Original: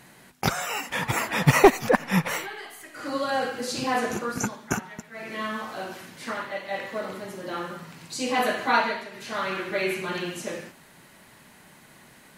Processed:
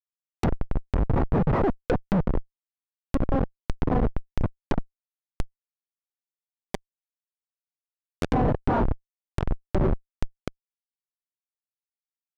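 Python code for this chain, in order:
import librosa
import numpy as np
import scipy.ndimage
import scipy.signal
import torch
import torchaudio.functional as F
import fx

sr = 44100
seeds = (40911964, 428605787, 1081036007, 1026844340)

y = fx.schmitt(x, sr, flips_db=-20.0)
y = fx.env_lowpass_down(y, sr, base_hz=1000.0, full_db=-28.5)
y = y * 10.0 ** (8.0 / 20.0)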